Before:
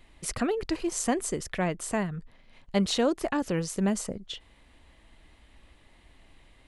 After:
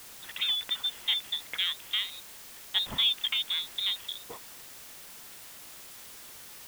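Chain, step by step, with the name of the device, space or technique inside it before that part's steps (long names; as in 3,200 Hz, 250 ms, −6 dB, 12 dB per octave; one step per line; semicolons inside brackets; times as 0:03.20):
scrambled radio voice (band-pass filter 300–2,700 Hz; voice inversion scrambler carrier 3,900 Hz; white noise bed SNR 13 dB)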